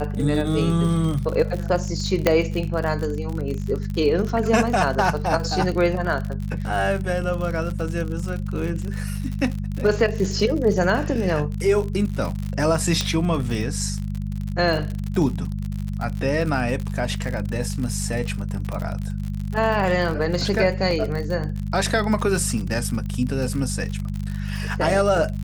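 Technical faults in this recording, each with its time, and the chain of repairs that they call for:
surface crackle 59 per second −27 dBFS
mains hum 50 Hz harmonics 4 −27 dBFS
0:02.27: click −3 dBFS
0:13.01: click −8 dBFS
0:20.91: drop-out 2.1 ms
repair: click removal
hum removal 50 Hz, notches 4
repair the gap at 0:20.91, 2.1 ms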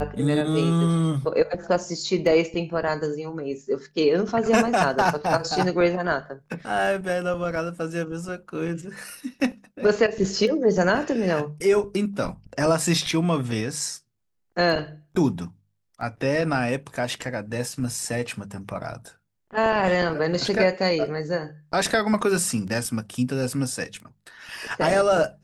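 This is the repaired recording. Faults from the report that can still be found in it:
0:02.27: click
0:13.01: click

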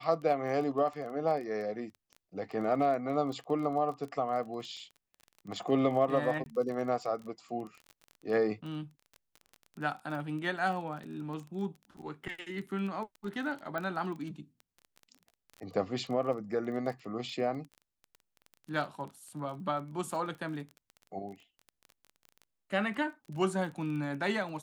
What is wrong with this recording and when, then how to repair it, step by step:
surface crackle 21 per second −39 dBFS
0:06.44–0:06.46: drop-out 20 ms
0:13.78: click −23 dBFS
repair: click removal
repair the gap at 0:06.44, 20 ms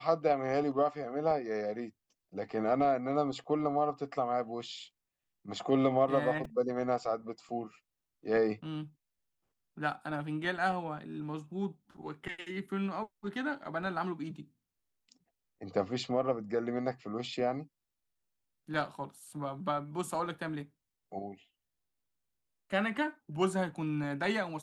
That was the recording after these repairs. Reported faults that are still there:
none of them is left

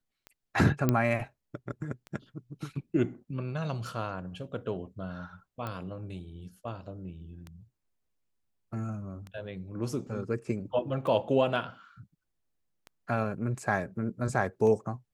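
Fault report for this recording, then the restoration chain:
scratch tick 33 1/3 rpm −28 dBFS
0:00.89: click −12 dBFS
0:05.67: click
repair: click removal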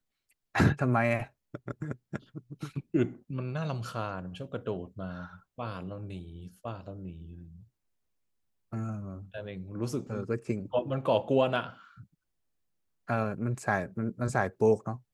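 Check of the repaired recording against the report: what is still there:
none of them is left

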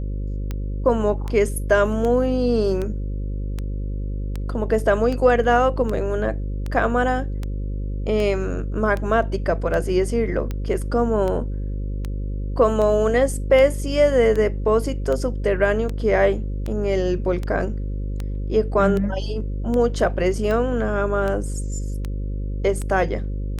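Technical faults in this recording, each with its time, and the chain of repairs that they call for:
mains buzz 50 Hz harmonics 11 −26 dBFS
scratch tick 78 rpm −15 dBFS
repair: click removal
hum removal 50 Hz, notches 11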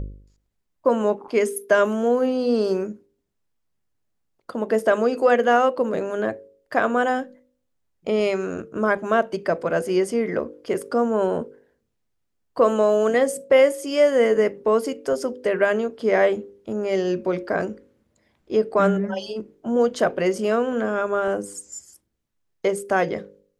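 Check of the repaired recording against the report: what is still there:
none of them is left

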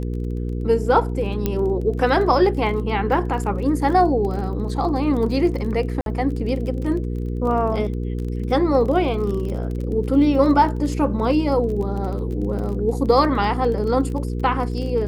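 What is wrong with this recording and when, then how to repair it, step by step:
surface crackle 28 per second −29 dBFS
mains hum 60 Hz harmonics 8 −25 dBFS
0:01.46: click −8 dBFS
0:06.01–0:06.06: drop-out 52 ms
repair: click removal
hum removal 60 Hz, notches 8
repair the gap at 0:06.01, 52 ms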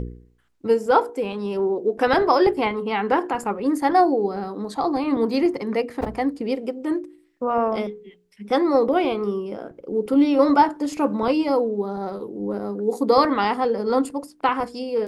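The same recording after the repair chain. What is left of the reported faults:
none of them is left

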